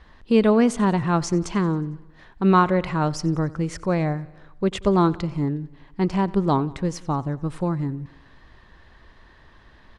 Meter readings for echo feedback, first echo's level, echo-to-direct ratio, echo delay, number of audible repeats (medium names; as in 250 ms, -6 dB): 60%, -21.5 dB, -19.5 dB, 91 ms, 4